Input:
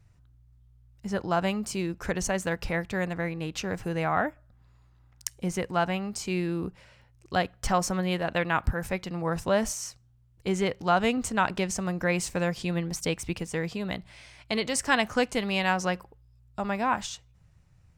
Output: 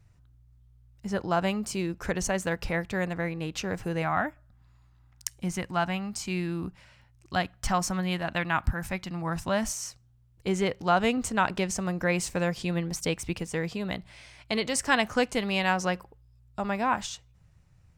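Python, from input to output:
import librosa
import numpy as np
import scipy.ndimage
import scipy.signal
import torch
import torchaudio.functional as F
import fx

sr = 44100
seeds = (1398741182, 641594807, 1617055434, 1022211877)

y = fx.peak_eq(x, sr, hz=460.0, db=-11.5, octaves=0.53, at=(4.02, 9.75))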